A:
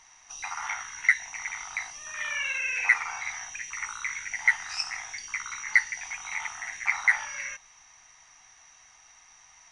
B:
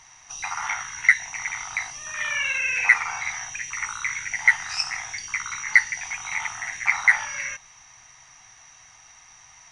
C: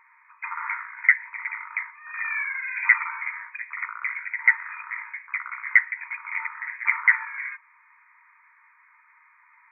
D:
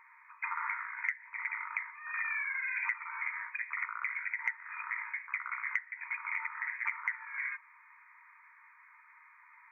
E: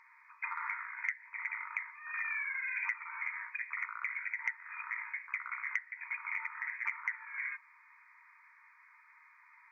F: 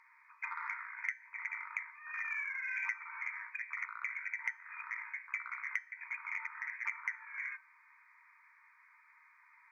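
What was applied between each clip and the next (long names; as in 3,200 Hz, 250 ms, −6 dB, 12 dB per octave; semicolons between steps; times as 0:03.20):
parametric band 120 Hz +9.5 dB 1 octave; level +5 dB
brick-wall band-pass 890–2,500 Hz; level −1 dB
downward compressor 10 to 1, threshold −30 dBFS, peak gain reduction 19.5 dB; level −1.5 dB
parametric band 4,900 Hz +14.5 dB 1 octave; level −4 dB
tuned comb filter 770 Hz, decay 0.4 s, mix 70%; harmonic generator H 7 −35 dB, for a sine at −27.5 dBFS; level +8.5 dB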